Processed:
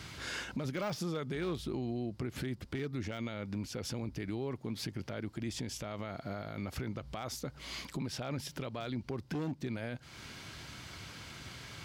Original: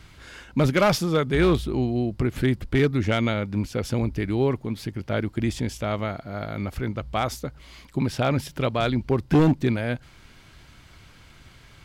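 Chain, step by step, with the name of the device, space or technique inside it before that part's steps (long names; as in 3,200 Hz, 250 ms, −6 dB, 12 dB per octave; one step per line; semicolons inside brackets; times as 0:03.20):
broadcast voice chain (high-pass filter 91 Hz; de-essing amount 65%; downward compressor 4 to 1, threshold −37 dBFS, peak gain reduction 19 dB; parametric band 5,400 Hz +4.5 dB 1 octave; brickwall limiter −31.5 dBFS, peak gain reduction 9.5 dB)
level +3.5 dB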